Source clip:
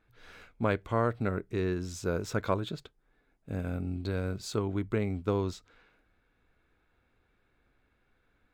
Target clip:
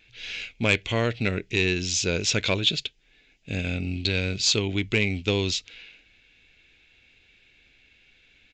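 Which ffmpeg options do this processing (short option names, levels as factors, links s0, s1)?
-af "highshelf=f=1800:t=q:w=3:g=13.5,aresample=16000,asoftclip=type=tanh:threshold=0.178,aresample=44100,volume=1.78"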